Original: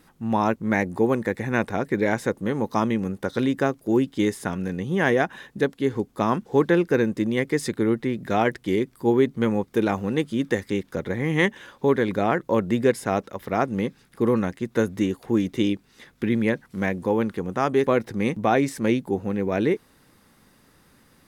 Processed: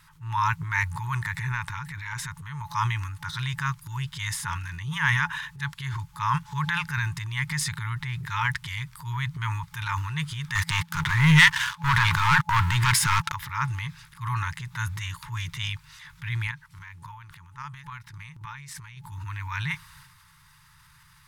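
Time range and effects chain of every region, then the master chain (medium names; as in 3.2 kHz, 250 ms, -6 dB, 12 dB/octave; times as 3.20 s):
1.52–2.75 s: band-stop 4.8 kHz, Q 30 + compression 3:1, threshold -27 dBFS
10.55–13.32 s: high-pass 88 Hz 6 dB/octave + waveshaping leveller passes 3
16.47–19.04 s: compression 4:1, threshold -28 dBFS + square tremolo 3.6 Hz, depth 65%, duty 15%
whole clip: FFT band-reject 170–860 Hz; treble shelf 9.3 kHz -4 dB; transient shaper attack -6 dB, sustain +7 dB; trim +3.5 dB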